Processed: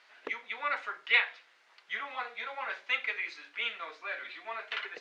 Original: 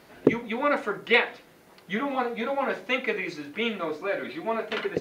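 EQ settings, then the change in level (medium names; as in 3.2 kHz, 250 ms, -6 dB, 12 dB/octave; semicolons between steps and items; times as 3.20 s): high-pass 1.5 kHz 12 dB/octave; distance through air 130 m; 0.0 dB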